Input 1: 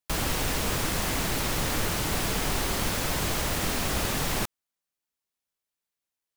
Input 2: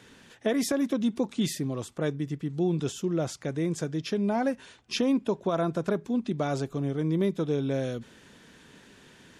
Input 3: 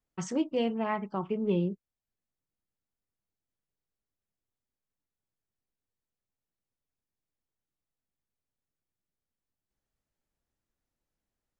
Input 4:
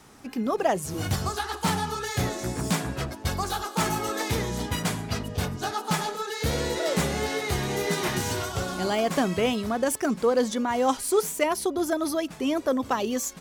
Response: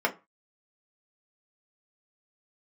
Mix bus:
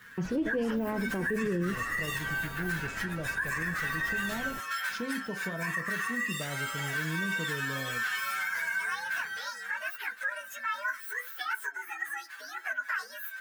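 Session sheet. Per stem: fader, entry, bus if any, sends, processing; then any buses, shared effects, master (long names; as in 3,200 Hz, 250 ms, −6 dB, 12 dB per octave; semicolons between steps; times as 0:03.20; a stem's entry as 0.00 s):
−15.5 dB, 0.15 s, no send, low-pass filter 1,200 Hz 6 dB per octave
−16.0 dB, 0.00 s, send −15 dB, bass and treble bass +11 dB, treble +4 dB
+1.5 dB, 0.00 s, no send, Gaussian smoothing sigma 1.9 samples; low shelf with overshoot 610 Hz +6.5 dB, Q 1.5
−1.0 dB, 0.00 s, send −18.5 dB, partials spread apart or drawn together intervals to 124%; downward compressor 4 to 1, threshold −31 dBFS, peak gain reduction 10 dB; high-pass with resonance 1,600 Hz, resonance Q 8.2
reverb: on, RT60 0.25 s, pre-delay 3 ms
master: brickwall limiter −23 dBFS, peak gain reduction 15 dB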